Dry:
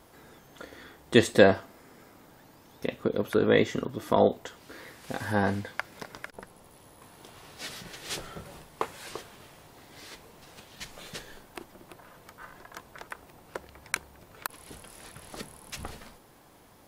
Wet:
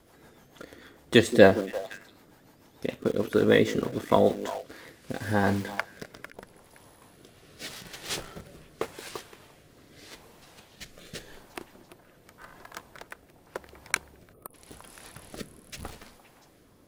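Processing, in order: delay with a stepping band-pass 0.173 s, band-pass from 300 Hz, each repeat 1.4 oct, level -9.5 dB; in parallel at -6.5 dB: requantised 6-bit, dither none; on the sum: rotary speaker horn 6.7 Hz, later 0.85 Hz, at 4.11; spectral gain 14.33–14.54, 1300–8800 Hz -20 dB

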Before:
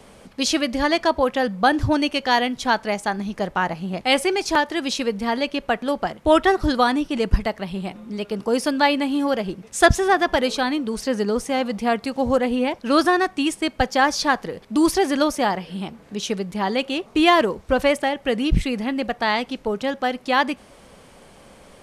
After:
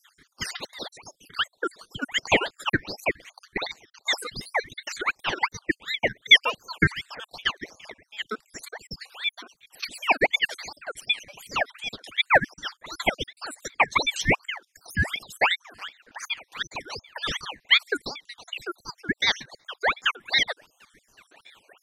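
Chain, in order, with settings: random spectral dropouts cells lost 76%; resonant low shelf 390 Hz -13.5 dB, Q 3; ring modulator with a swept carrier 1900 Hz, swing 55%, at 2.7 Hz

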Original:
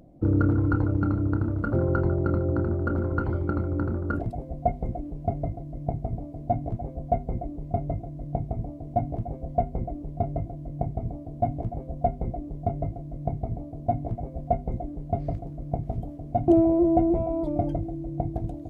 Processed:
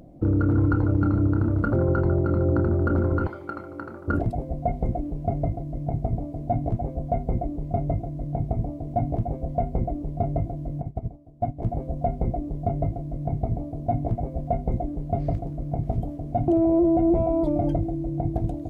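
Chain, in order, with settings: 3.27–4.08 HPF 1400 Hz 6 dB/oct; limiter -18.5 dBFS, peak gain reduction 10 dB; 10.81–11.62 upward expander 2.5:1, over -37 dBFS; gain +5 dB

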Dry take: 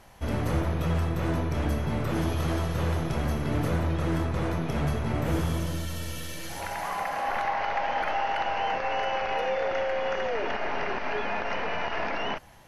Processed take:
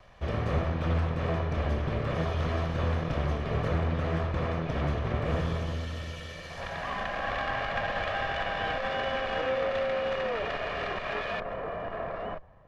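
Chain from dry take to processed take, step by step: minimum comb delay 1.7 ms; LPF 3700 Hz 12 dB/oct, from 11.4 s 1100 Hz

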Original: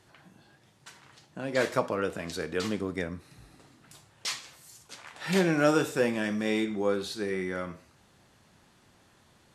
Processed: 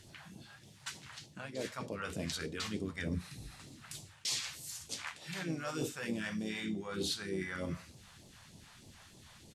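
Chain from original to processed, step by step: notches 60/120/180/240/300/360/420/480/540 Hz; reverse; compressor 16:1, threshold -37 dBFS, peak gain reduction 19.5 dB; reverse; harmoniser -3 st -9 dB; phaser stages 2, 3.3 Hz, lowest notch 290–1500 Hz; gain +6 dB

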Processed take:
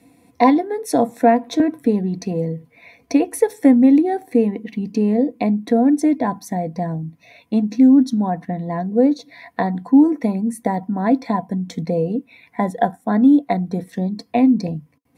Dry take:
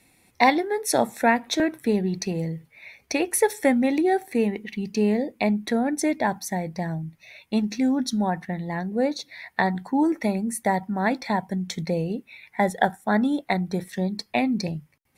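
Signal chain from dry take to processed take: HPF 87 Hz; low shelf 280 Hz +11 dB; in parallel at 0 dB: compressor, threshold -30 dBFS, peak gain reduction 18.5 dB; on the sum: small resonant body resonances 280/480/690/1000 Hz, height 15 dB, ringing for 65 ms; gain -8 dB

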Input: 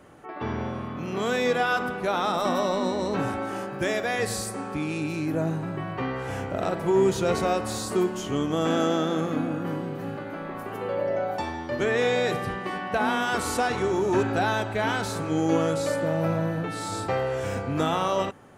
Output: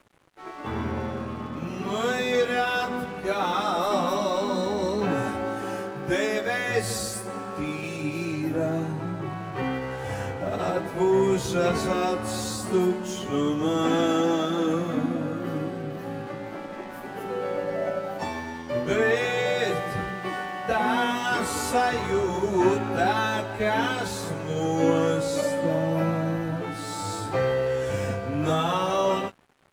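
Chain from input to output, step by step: plain phase-vocoder stretch 1.6×; crossover distortion -51 dBFS; gain +4 dB

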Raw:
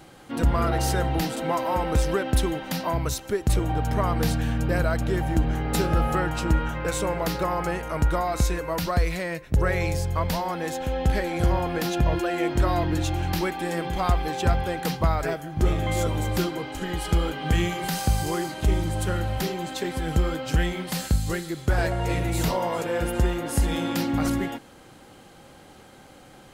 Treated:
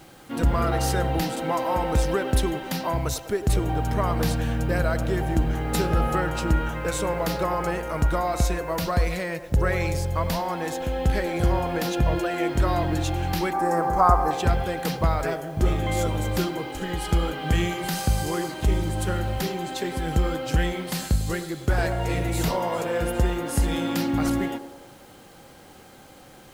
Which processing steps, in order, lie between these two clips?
13.53–14.31 EQ curve 240 Hz 0 dB, 1200 Hz +11 dB, 3300 Hz -21 dB, 5500 Hz -1 dB; bit-crush 9-bit; on a send: narrowing echo 0.101 s, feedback 68%, band-pass 590 Hz, level -10.5 dB

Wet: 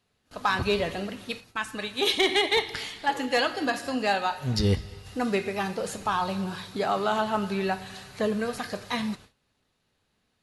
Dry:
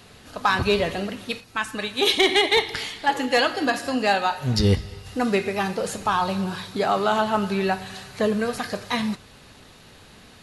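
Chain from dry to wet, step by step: gate with hold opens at -34 dBFS; gain -4.5 dB

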